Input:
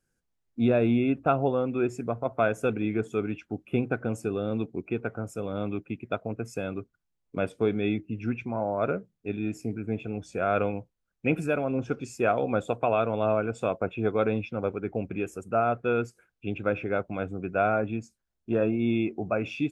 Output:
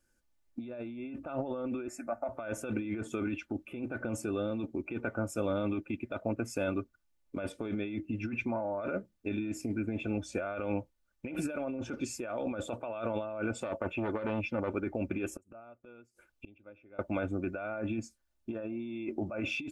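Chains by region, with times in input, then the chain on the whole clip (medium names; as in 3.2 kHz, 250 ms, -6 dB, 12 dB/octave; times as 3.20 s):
1.88–2.29 s: resonant low shelf 550 Hz -8.5 dB, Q 1.5 + static phaser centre 660 Hz, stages 8
13.60–14.71 s: band-stop 3.7 kHz, Q 7.7 + transformer saturation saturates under 660 Hz
15.27–16.99 s: inverted gate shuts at -31 dBFS, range -28 dB + peaking EQ 1.7 kHz -5 dB 0.61 oct
whole clip: comb 3.4 ms, depth 59%; compressor with a negative ratio -31 dBFS, ratio -1; peaking EQ 190 Hz -2.5 dB 1.9 oct; trim -2.5 dB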